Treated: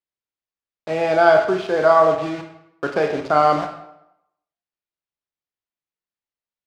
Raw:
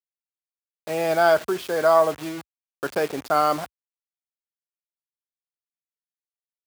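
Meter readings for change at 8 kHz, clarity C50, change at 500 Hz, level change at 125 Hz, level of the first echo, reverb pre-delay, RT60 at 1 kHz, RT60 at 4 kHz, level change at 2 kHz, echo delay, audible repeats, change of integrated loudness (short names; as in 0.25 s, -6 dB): n/a, 7.5 dB, +4.5 dB, +6.0 dB, none, 18 ms, 0.85 s, 0.60 s, +4.0 dB, none, none, +4.0 dB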